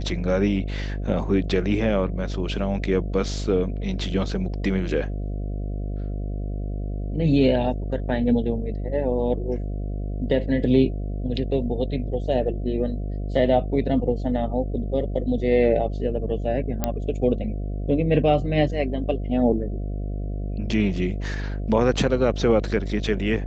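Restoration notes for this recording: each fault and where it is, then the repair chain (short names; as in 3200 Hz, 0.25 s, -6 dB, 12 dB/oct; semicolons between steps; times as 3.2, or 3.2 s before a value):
buzz 50 Hz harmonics 14 -28 dBFS
16.84 pop -8 dBFS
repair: de-click; de-hum 50 Hz, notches 14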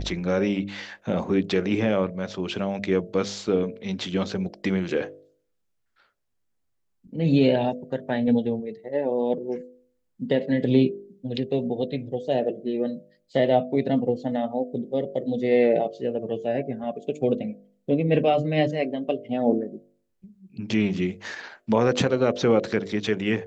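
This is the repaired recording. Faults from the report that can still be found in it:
none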